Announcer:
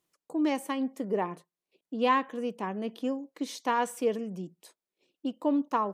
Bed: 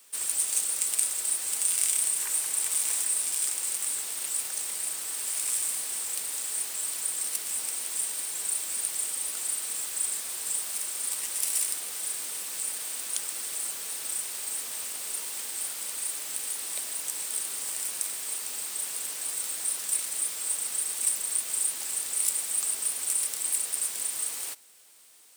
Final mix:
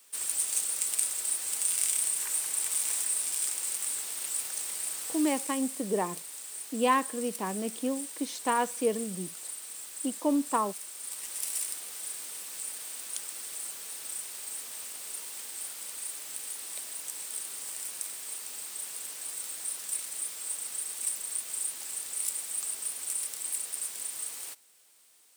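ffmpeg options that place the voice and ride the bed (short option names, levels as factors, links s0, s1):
-filter_complex "[0:a]adelay=4800,volume=1[s0];[1:a]volume=1.19,afade=t=out:st=5.07:d=0.45:silence=0.446684,afade=t=in:st=10.97:d=0.4:silence=0.630957[s1];[s0][s1]amix=inputs=2:normalize=0"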